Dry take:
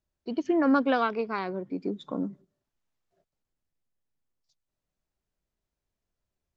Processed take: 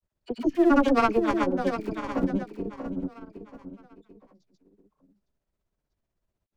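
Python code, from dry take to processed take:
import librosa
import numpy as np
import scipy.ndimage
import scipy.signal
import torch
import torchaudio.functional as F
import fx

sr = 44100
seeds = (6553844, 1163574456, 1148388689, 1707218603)

p1 = fx.tracing_dist(x, sr, depth_ms=0.19)
p2 = fx.schmitt(p1, sr, flips_db=-25.5)
p3 = p1 + (p2 * 10.0 ** (-7.5 / 20.0))
p4 = fx.dispersion(p3, sr, late='lows', ms=52.0, hz=960.0)
p5 = p4 + fx.echo_feedback(p4, sr, ms=705, feedback_pct=33, wet_db=-8, dry=0)
p6 = fx.granulator(p5, sr, seeds[0], grain_ms=100.0, per_s=16.0, spray_ms=100.0, spread_st=0)
p7 = fx.high_shelf(p6, sr, hz=2100.0, db=-9.0)
y = p7 * 10.0 ** (6.5 / 20.0)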